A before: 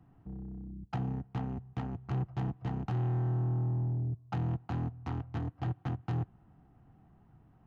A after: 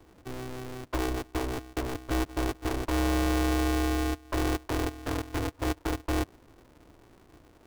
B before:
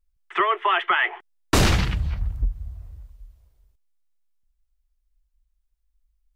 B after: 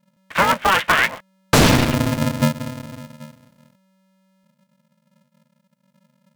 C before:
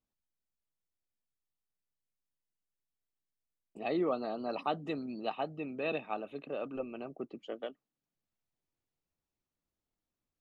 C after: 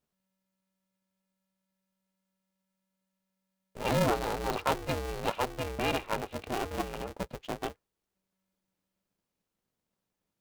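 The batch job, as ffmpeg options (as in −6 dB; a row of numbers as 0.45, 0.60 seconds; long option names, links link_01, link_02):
-af "aeval=exprs='val(0)*sgn(sin(2*PI*190*n/s))':channel_layout=same,volume=4.5dB"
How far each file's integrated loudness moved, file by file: +4.5, +5.0, +4.5 LU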